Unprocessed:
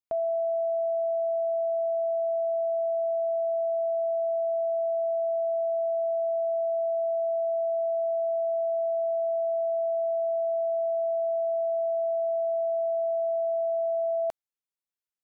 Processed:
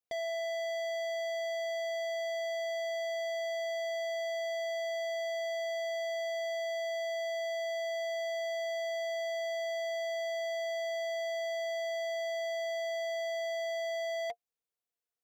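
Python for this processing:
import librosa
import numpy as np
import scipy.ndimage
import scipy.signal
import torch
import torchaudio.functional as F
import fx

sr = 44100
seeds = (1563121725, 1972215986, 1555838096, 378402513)

y = fx.small_body(x, sr, hz=(470.0, 700.0), ring_ms=65, db=12)
y = np.clip(y, -10.0 ** (-33.0 / 20.0), 10.0 ** (-33.0 / 20.0))
y = y * librosa.db_to_amplitude(-1.5)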